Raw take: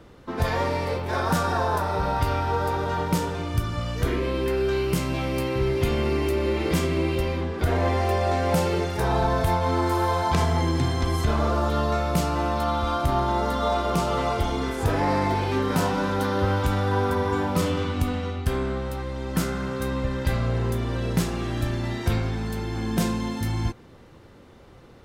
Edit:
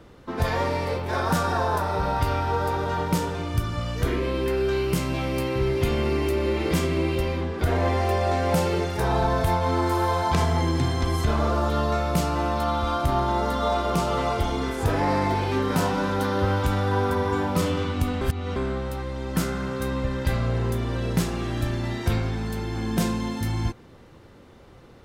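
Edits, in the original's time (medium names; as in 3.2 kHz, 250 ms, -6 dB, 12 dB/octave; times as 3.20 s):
18.21–18.56 s: reverse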